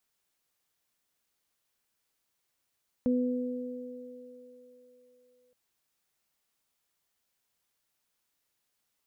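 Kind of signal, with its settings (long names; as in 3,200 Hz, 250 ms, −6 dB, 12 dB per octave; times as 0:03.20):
harmonic partials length 2.47 s, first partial 249 Hz, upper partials −7 dB, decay 2.61 s, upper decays 4.17 s, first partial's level −23 dB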